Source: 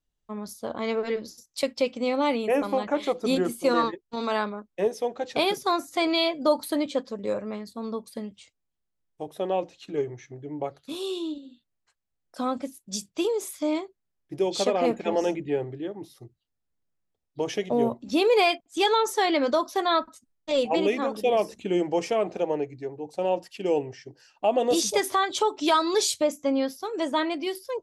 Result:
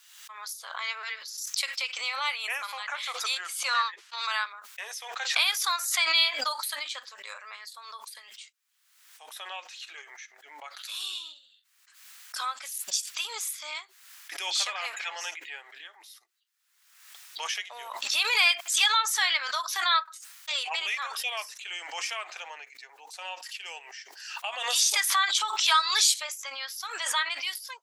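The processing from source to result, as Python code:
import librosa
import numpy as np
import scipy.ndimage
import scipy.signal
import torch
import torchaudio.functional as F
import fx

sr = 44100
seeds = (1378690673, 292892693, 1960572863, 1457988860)

y = fx.lowpass(x, sr, hz=fx.line((3.26, 9600.0), (4.17, 5400.0)), slope=12, at=(3.26, 4.17), fade=0.02)
y = scipy.signal.sosfilt(scipy.signal.butter(4, 1300.0, 'highpass', fs=sr, output='sos'), y)
y = fx.pre_swell(y, sr, db_per_s=52.0)
y = y * librosa.db_to_amplitude(4.5)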